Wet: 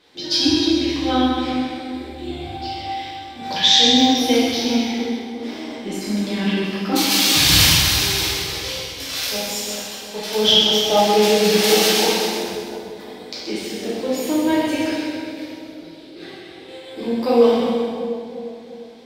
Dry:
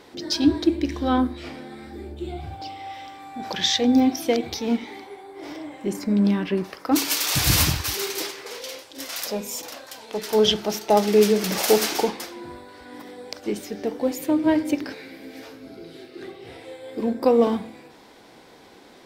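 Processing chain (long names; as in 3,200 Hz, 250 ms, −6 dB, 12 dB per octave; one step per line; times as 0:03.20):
noise gate −39 dBFS, range −8 dB
parametric band 3,500 Hz +9 dB 1.4 octaves
on a send: echo with a time of its own for lows and highs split 800 Hz, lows 350 ms, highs 129 ms, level −7.5 dB
on the sum: dense smooth reverb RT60 1.4 s, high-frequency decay 0.95×, DRR −7.5 dB
level −6 dB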